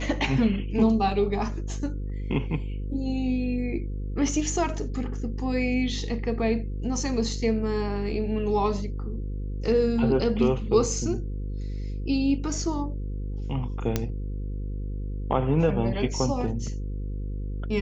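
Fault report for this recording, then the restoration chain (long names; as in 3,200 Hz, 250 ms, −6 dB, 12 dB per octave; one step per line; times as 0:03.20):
mains buzz 50 Hz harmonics 10 −31 dBFS
0:13.96: click −10 dBFS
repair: click removal
hum removal 50 Hz, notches 10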